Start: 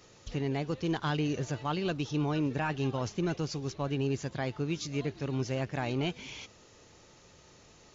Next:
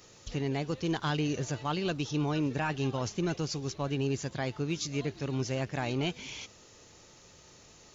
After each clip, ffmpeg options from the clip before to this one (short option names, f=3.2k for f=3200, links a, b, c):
-af "highshelf=f=5.4k:g=8"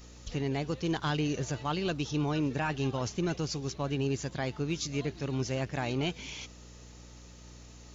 -af "aeval=exprs='val(0)+0.00316*(sin(2*PI*60*n/s)+sin(2*PI*2*60*n/s)/2+sin(2*PI*3*60*n/s)/3+sin(2*PI*4*60*n/s)/4+sin(2*PI*5*60*n/s)/5)':c=same"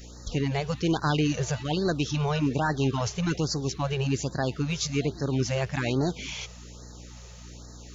-af "afftfilt=real='re*(1-between(b*sr/1024,240*pow(2800/240,0.5+0.5*sin(2*PI*1.2*pts/sr))/1.41,240*pow(2800/240,0.5+0.5*sin(2*PI*1.2*pts/sr))*1.41))':imag='im*(1-between(b*sr/1024,240*pow(2800/240,0.5+0.5*sin(2*PI*1.2*pts/sr))/1.41,240*pow(2800/240,0.5+0.5*sin(2*PI*1.2*pts/sr))*1.41))':win_size=1024:overlap=0.75,volume=6dB"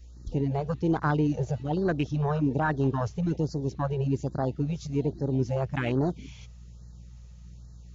-af "afwtdn=0.0224"